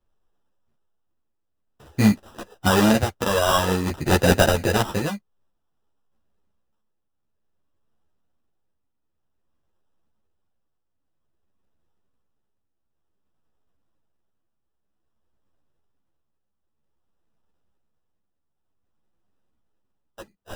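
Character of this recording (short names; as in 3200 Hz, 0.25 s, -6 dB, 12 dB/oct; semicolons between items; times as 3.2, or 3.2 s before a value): tremolo triangle 0.53 Hz, depth 65%; aliases and images of a low sample rate 2200 Hz, jitter 0%; a shimmering, thickened sound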